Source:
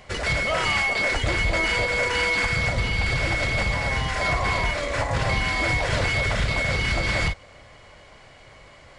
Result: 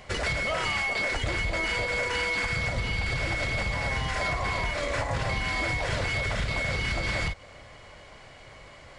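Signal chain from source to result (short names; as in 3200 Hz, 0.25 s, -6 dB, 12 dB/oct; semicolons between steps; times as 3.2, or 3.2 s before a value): compressor, threshold -25 dBFS, peak gain reduction 7 dB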